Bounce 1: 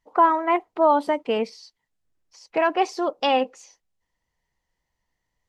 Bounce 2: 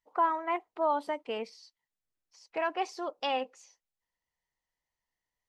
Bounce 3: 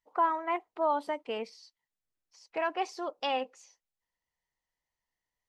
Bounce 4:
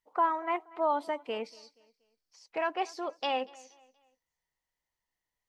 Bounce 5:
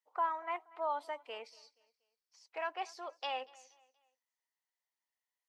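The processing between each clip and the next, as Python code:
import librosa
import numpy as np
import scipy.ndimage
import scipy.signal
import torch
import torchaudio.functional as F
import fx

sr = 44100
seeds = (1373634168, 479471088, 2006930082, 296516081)

y1 = fx.low_shelf(x, sr, hz=400.0, db=-8.0)
y1 = F.gain(torch.from_numpy(y1), -8.5).numpy()
y2 = y1
y3 = fx.echo_feedback(y2, sr, ms=238, feedback_pct=38, wet_db=-23)
y4 = scipy.signal.sosfilt(scipy.signal.butter(2, 620.0, 'highpass', fs=sr, output='sos'), y3)
y4 = F.gain(torch.from_numpy(y4), -5.5).numpy()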